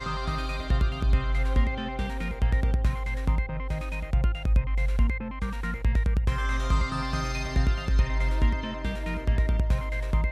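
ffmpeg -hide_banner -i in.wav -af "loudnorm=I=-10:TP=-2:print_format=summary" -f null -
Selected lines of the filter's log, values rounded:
Input Integrated:    -28.0 LUFS
Input True Peak:     -10.9 dBTP
Input LRA:             0.8 LU
Input Threshold:     -38.0 LUFS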